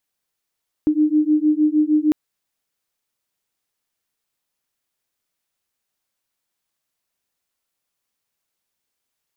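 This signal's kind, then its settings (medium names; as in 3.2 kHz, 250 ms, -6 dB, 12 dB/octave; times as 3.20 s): beating tones 301 Hz, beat 6.5 Hz, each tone -17 dBFS 1.25 s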